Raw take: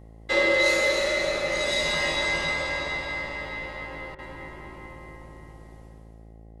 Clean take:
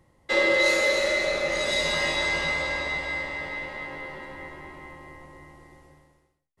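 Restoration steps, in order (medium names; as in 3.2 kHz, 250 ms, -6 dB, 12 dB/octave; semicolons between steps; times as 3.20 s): de-hum 55.2 Hz, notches 15; interpolate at 4.15 s, 35 ms; inverse comb 572 ms -15.5 dB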